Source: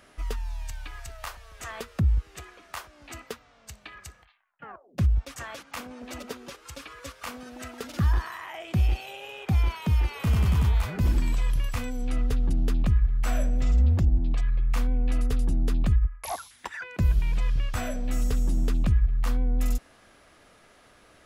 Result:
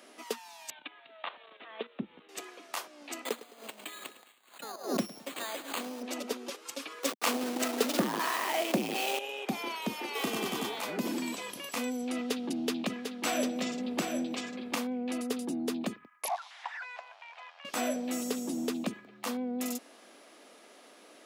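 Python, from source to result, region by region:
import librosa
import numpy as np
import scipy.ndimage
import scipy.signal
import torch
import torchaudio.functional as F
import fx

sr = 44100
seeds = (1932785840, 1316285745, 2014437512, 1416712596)

y = fx.chain(x, sr, fx.steep_lowpass(hz=3800.0, slope=96),
    fx.high_shelf(hz=3000.0, db=3.5),
    fx.level_steps(step_db=12), at=(0.7, 2.29))
y = fx.chain(y, sr, fx.resample_bad(factor=8, down='none', up='hold'),
    fx.echo_feedback(ms=106, feedback_pct=46, wet_db=-16),
    fx.pre_swell(db_per_s=130.0), at=(3.25, 6.03))
y = fx.chain(y, sr, fx.delta_hold(step_db=-40.5),
    fx.leveller(passes=2), at=(7.03, 9.19))
y = fx.chain(y, sr, fx.zero_step(step_db=-39.5),
    fx.peak_eq(hz=3400.0, db=3.5, octaves=0.2),
    fx.comb(ms=2.6, depth=0.4), at=(10.15, 10.79))
y = fx.chain(y, sr, fx.peak_eq(hz=3300.0, db=5.5, octaves=2.1),
    fx.echo_single(ms=748, db=-5.5), at=(12.15, 14.75))
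y = fx.chain(y, sr, fx.zero_step(step_db=-34.5),
    fx.ellip_highpass(hz=720.0, order=4, stop_db=60),
    fx.spacing_loss(db_at_10k=34), at=(16.28, 17.65))
y = scipy.signal.sosfilt(scipy.signal.butter(6, 230.0, 'highpass', fs=sr, output='sos'), y)
y = fx.peak_eq(y, sr, hz=1500.0, db=-6.5, octaves=1.1)
y = y * 10.0 ** (3.5 / 20.0)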